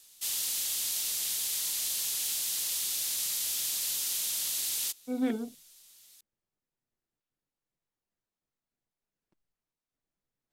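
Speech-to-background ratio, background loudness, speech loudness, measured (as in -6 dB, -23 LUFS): -4.5 dB, -29.5 LUFS, -34.0 LUFS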